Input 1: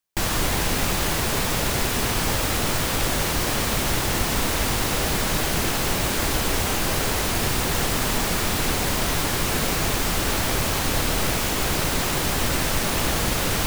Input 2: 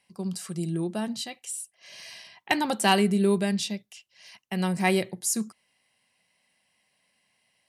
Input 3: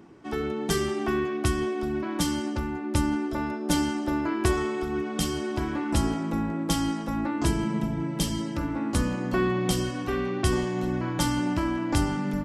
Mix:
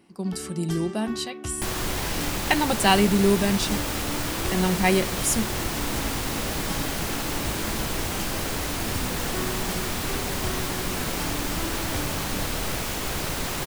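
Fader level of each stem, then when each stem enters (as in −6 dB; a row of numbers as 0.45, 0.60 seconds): −5.5, +2.5, −9.0 decibels; 1.45, 0.00, 0.00 seconds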